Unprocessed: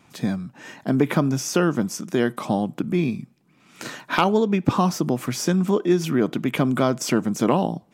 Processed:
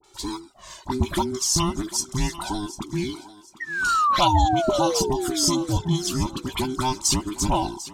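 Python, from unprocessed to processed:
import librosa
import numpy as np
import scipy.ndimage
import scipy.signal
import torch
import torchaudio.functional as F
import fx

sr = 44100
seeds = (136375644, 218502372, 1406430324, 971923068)

p1 = fx.band_invert(x, sr, width_hz=500)
p2 = fx.dispersion(p1, sr, late='highs', ms=40.0, hz=1300.0)
p3 = fx.spec_paint(p2, sr, seeds[0], shape='fall', start_s=3.6, length_s=1.99, low_hz=250.0, high_hz=1900.0, level_db=-22.0)
p4 = fx.env_flanger(p3, sr, rest_ms=2.3, full_db=-14.5)
p5 = fx.graphic_eq(p4, sr, hz=(125, 250, 500, 1000, 2000, 4000, 8000), db=(-5, -9, -4, 5, -11, 8, 8))
p6 = p5 + fx.echo_thinned(p5, sr, ms=746, feedback_pct=28, hz=330.0, wet_db=-15.0, dry=0)
y = p6 * librosa.db_to_amplitude(3.0)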